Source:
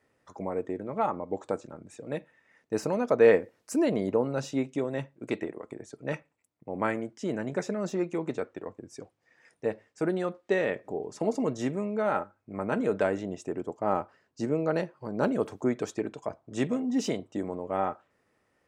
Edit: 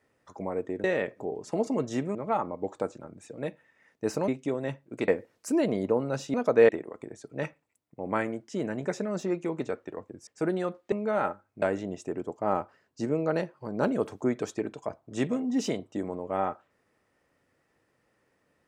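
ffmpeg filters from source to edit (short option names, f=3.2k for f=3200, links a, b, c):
-filter_complex "[0:a]asplit=10[a][b][c][d][e][f][g][h][i][j];[a]atrim=end=0.842[k];[b]atrim=start=10.518:end=11.832[l];[c]atrim=start=0.838:end=2.972[m];[d]atrim=start=4.578:end=5.382[n];[e]atrim=start=3.318:end=4.582[o];[f]atrim=start=2.968:end=3.322[p];[g]atrim=start=5.378:end=8.962[q];[h]atrim=start=9.868:end=10.522[r];[i]atrim=start=11.828:end=12.532[s];[j]atrim=start=13.018[t];[k][l]acrossfade=d=0.004:c1=hsin:c2=hsin[u];[u][m]acrossfade=d=0.004:c1=hsin:c2=hsin[v];[v][n]acrossfade=d=0.004:c1=hsin:c2=hsin[w];[w][o]acrossfade=d=0.004:c1=hsin:c2=hsin[x];[x][p]acrossfade=d=0.004:c1=hsin:c2=hsin[y];[y][q]acrossfade=d=0.004:c1=hsin:c2=hsin[z];[z][r]acrossfade=d=0.004:c1=hsin:c2=hsin[aa];[aa][s]acrossfade=d=0.004:c1=hsin:c2=hsin[ab];[ab][t]acrossfade=d=0.004:c1=hsin:c2=hsin"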